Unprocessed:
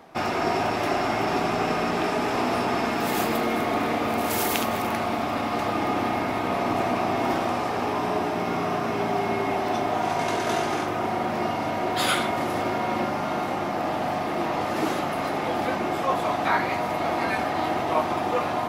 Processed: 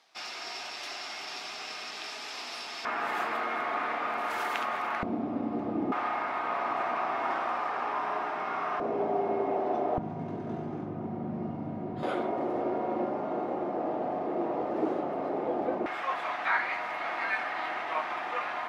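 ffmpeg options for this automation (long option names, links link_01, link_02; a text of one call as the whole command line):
ffmpeg -i in.wav -af "asetnsamples=nb_out_samples=441:pad=0,asendcmd='2.85 bandpass f 1400;5.03 bandpass f 270;5.92 bandpass f 1300;8.8 bandpass f 490;9.98 bandpass f 170;12.03 bandpass f 430;15.86 bandpass f 1800',bandpass=frequency=4700:width_type=q:width=1.5:csg=0" out.wav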